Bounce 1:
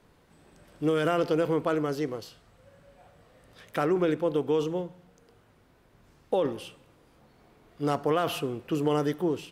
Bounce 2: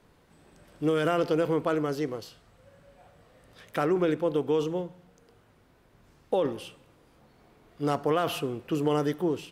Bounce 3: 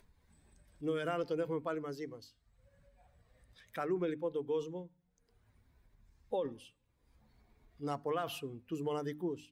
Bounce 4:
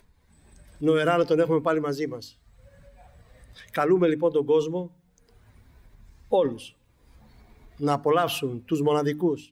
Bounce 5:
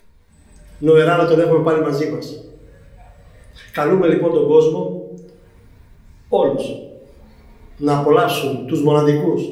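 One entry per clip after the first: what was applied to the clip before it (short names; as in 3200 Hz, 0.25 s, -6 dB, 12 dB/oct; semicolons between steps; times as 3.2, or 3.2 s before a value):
nothing audible
per-bin expansion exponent 1.5; upward compressor, threshold -44 dBFS; notches 50/100/150/200/250/300 Hz; gain -7.5 dB
AGC gain up to 8 dB; gain +6 dB
reverb RT60 1.0 s, pre-delay 4 ms, DRR -1 dB; gain +3.5 dB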